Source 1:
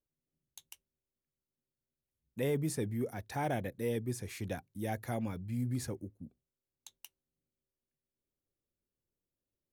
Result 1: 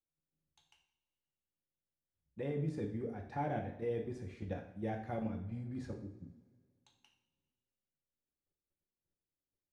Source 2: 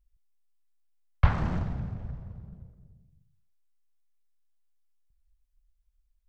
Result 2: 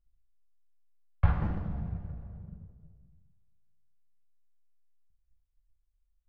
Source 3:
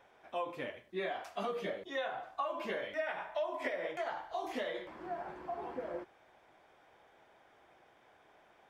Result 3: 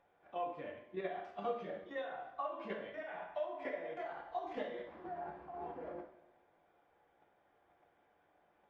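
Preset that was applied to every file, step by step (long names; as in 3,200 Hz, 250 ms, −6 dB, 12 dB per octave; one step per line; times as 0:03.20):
output level in coarse steps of 9 dB
head-to-tape spacing loss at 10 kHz 27 dB
coupled-rooms reverb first 0.56 s, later 2.2 s, from −20 dB, DRR 1 dB
level −1 dB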